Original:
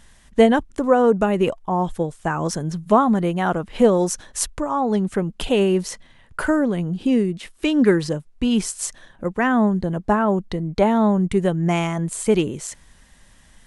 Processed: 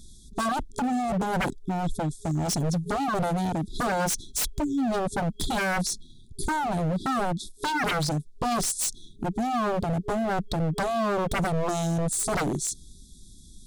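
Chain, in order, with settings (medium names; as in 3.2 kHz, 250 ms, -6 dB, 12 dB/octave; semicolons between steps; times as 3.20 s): FFT band-reject 410–3300 Hz; wavefolder -24.5 dBFS; trim +3.5 dB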